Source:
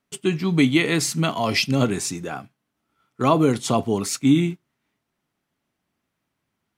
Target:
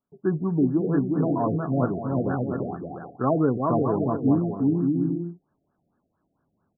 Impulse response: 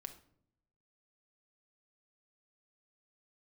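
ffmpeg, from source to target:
-af "aecho=1:1:360|576|705.6|783.4|830:0.631|0.398|0.251|0.158|0.1,dynaudnorm=f=170:g=3:m=12.5dB,afftfilt=real='re*lt(b*sr/1024,720*pow(1800/720,0.5+0.5*sin(2*PI*4.4*pts/sr)))':imag='im*lt(b*sr/1024,720*pow(1800/720,0.5+0.5*sin(2*PI*4.4*pts/sr)))':win_size=1024:overlap=0.75,volume=-8.5dB"

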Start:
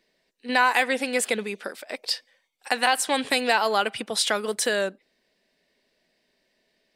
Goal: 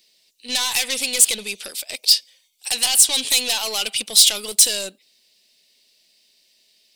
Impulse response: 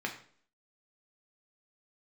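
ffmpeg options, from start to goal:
-af "aeval=exprs='(tanh(14.1*val(0)+0.3)-tanh(0.3))/14.1':c=same,aexciter=amount=10.7:drive=2.8:freq=2.5k,volume=-3.5dB"

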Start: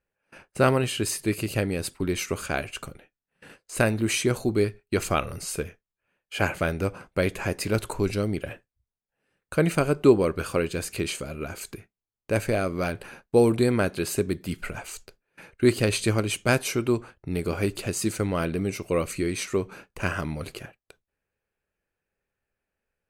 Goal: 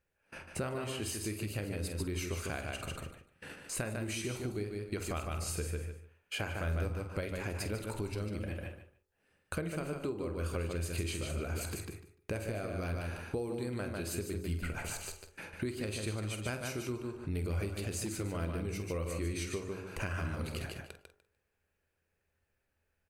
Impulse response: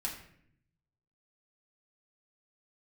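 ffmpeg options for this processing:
-filter_complex "[0:a]asplit=2[a][b];[b]adelay=48,volume=-11dB[c];[a][c]amix=inputs=2:normalize=0,bandreject=f=46.56:t=h:w=4,bandreject=f=93.12:t=h:w=4,bandreject=f=139.68:t=h:w=4,bandreject=f=186.24:t=h:w=4,bandreject=f=232.8:t=h:w=4,bandreject=f=279.36:t=h:w=4,bandreject=f=325.92:t=h:w=4,bandreject=f=372.48:t=h:w=4,bandreject=f=419.04:t=h:w=4,bandreject=f=465.6:t=h:w=4,bandreject=f=512.16:t=h:w=4,bandreject=f=558.72:t=h:w=4,bandreject=f=605.28:t=h:w=4,bandreject=f=651.84:t=h:w=4,bandreject=f=698.4:t=h:w=4,bandreject=f=744.96:t=h:w=4,bandreject=f=791.52:t=h:w=4,bandreject=f=838.08:t=h:w=4,bandreject=f=884.64:t=h:w=4,bandreject=f=931.2:t=h:w=4,bandreject=f=977.76:t=h:w=4,bandreject=f=1.02432k:t=h:w=4,bandreject=f=1.07088k:t=h:w=4,bandreject=f=1.11744k:t=h:w=4,bandreject=f=1.164k:t=h:w=4,bandreject=f=1.21056k:t=h:w=4,bandreject=f=1.25712k:t=h:w=4,bandreject=f=1.30368k:t=h:w=4,bandreject=f=1.35024k:t=h:w=4,bandreject=f=1.3968k:t=h:w=4,bandreject=f=1.44336k:t=h:w=4,asplit=2[d][e];[e]aecho=0:1:148|296|444:0.501|0.0852|0.0145[f];[d][f]amix=inputs=2:normalize=0,asettb=1/sr,asplit=3[g][h][i];[g]atrim=end=17.724[j];[h]atrim=start=17.72:end=18.23,asetpts=PTS-STARTPTS,afade=t=in:d=0.004:c=qsin,afade=t=out:st=0.506:d=0.004:c=qsin,volume=19.5dB,asoftclip=hard,volume=-19.5dB[k];[i]atrim=start=18.226[l];[j][k]acrossfade=d=0.004:c1=hsin:c2=qsin[m];[m][l]acrossfade=d=0.004:c1=qsin:c2=hsin,acompressor=threshold=-37dB:ratio=6,equalizer=f=82:t=o:w=0.28:g=13.5,volume=1dB"

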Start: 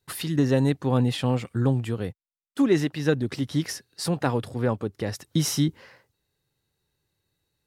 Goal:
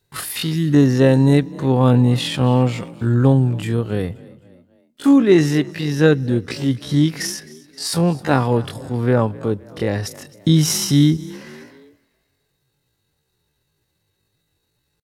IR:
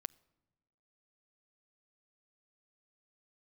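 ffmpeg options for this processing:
-filter_complex "[0:a]asplit=2[a][b];[1:a]atrim=start_sample=2205,afade=t=out:st=0.4:d=0.01,atrim=end_sample=18081[c];[b][c]afir=irnorm=-1:irlink=0,volume=8dB[d];[a][d]amix=inputs=2:normalize=0,atempo=0.51,asplit=4[e][f][g][h];[f]adelay=263,afreqshift=42,volume=-21.5dB[i];[g]adelay=526,afreqshift=84,volume=-28.2dB[j];[h]adelay=789,afreqshift=126,volume=-35dB[k];[e][i][j][k]amix=inputs=4:normalize=0,volume=-1dB"

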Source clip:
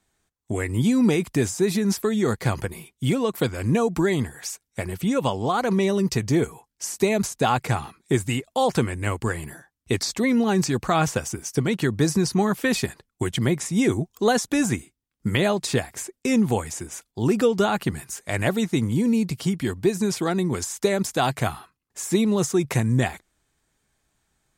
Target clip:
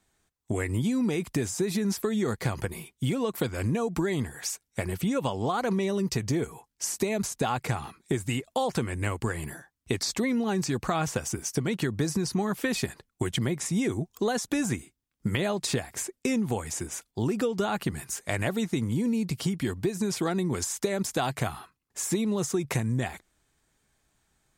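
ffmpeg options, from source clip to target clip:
-af "acompressor=threshold=-24dB:ratio=6"

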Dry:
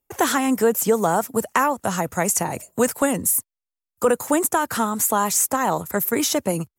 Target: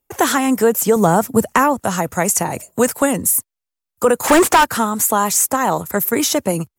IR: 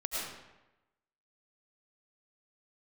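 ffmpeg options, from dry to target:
-filter_complex "[0:a]asettb=1/sr,asplit=3[a][b][c];[a]atrim=end=0.964[d];[b]atrim=start=0.96:end=1.79,asetpts=PTS-STARTPTS,afade=t=in:d=0.004:c=qsin,afade=t=out:st=0.826:d=0.004:c=qsin,lowshelf=f=240:g=11[e];[c]atrim=start=1.786[f];[d][e]acrossfade=d=0.004:c1=hsin:c2=qsin[g];[g][f]acrossfade=d=0.004:c1=qsin:c2=hsin,asplit=3[h][i][j];[h]afade=t=out:st=4.23:d=0.02[k];[i]asplit=2[l][m];[m]highpass=f=720:p=1,volume=29dB,asoftclip=type=tanh:threshold=-7dB[n];[l][n]amix=inputs=2:normalize=0,lowpass=f=2.9k:p=1,volume=-6dB,afade=t=in:st=4.23:d=0.02,afade=t=out:st=4.63:d=0.02[o];[j]afade=t=in:st=4.63:d=0.02[p];[k][o][p]amix=inputs=3:normalize=0,volume=4dB"

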